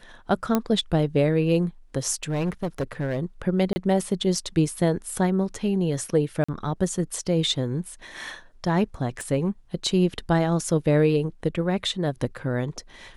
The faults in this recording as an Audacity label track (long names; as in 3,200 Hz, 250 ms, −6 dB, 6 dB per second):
0.550000	0.550000	click −8 dBFS
2.230000	3.190000	clipping −21.5 dBFS
3.730000	3.760000	drop-out 30 ms
6.440000	6.490000	drop-out 45 ms
9.210000	9.210000	click −23 dBFS